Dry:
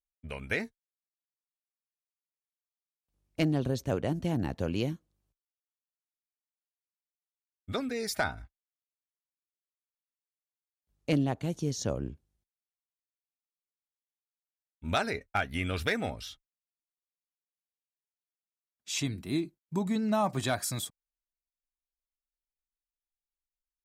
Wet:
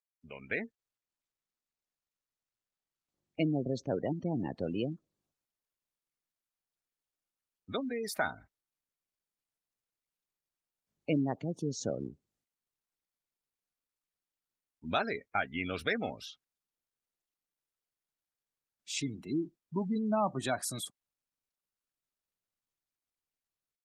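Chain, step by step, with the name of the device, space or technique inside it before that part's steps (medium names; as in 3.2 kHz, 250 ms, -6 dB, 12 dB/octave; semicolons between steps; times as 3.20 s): 4.88–8.14 s: dynamic bell 5.6 kHz, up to -5 dB, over -50 dBFS, Q 5.4; noise-suppressed video call (high-pass 160 Hz 12 dB/octave; spectral gate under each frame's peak -20 dB strong; level rider gain up to 5.5 dB; trim -7 dB; Opus 24 kbps 48 kHz)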